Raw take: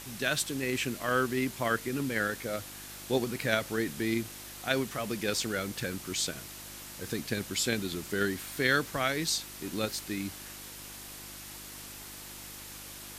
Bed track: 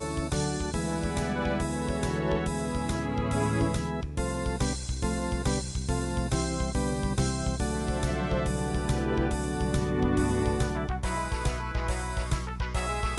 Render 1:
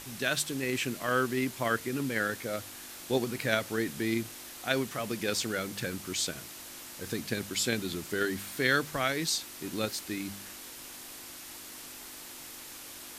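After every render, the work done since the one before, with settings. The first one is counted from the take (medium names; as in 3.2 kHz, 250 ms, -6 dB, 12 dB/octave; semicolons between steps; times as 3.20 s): de-hum 50 Hz, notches 4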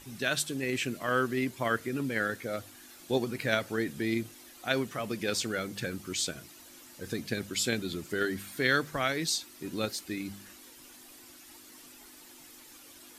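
noise reduction 10 dB, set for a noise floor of -46 dBFS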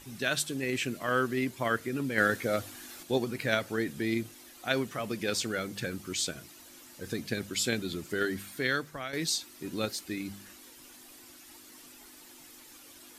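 2.18–3.03 s: gain +5.5 dB; 8.37–9.13 s: fade out, to -11 dB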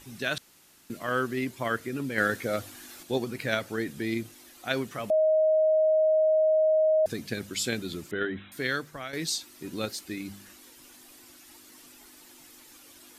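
0.38–0.90 s: room tone; 5.10–7.06 s: bleep 627 Hz -19 dBFS; 8.11–8.52 s: brick-wall FIR low-pass 4 kHz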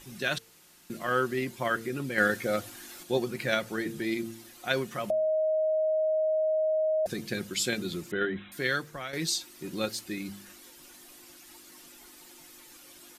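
comb 5.6 ms, depth 39%; de-hum 113.2 Hz, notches 4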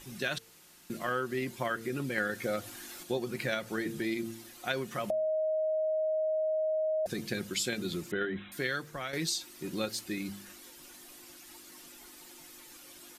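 compression 4:1, threshold -29 dBFS, peak gain reduction 9 dB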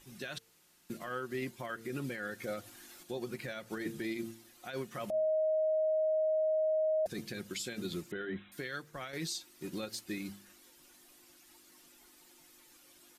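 peak limiter -26 dBFS, peak gain reduction 11 dB; upward expansion 1.5:1, over -48 dBFS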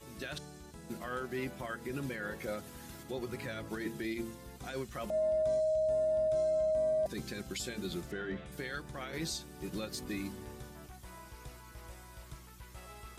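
add bed track -20.5 dB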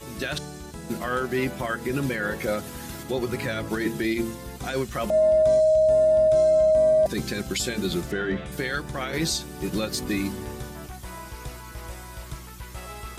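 trim +12 dB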